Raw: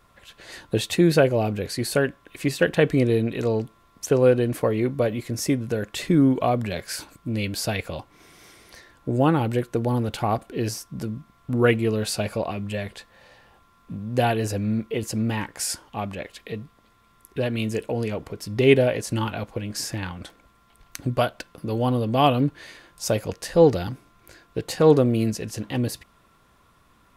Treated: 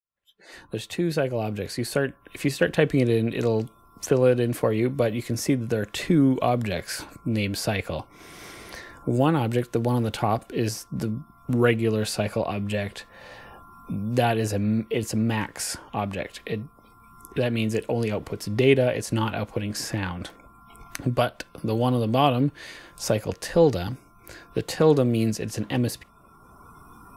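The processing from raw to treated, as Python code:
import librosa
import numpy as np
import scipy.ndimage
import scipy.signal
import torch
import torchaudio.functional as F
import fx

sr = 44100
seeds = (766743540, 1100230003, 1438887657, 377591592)

y = fx.fade_in_head(x, sr, length_s=2.81)
y = fx.noise_reduce_blind(y, sr, reduce_db=24)
y = fx.band_squash(y, sr, depth_pct=40)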